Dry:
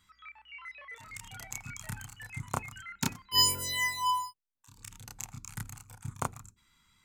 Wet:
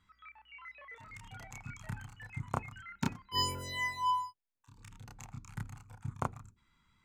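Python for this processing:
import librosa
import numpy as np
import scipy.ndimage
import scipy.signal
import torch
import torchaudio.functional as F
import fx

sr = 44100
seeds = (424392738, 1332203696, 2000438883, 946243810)

y = fx.lowpass(x, sr, hz=1500.0, slope=6)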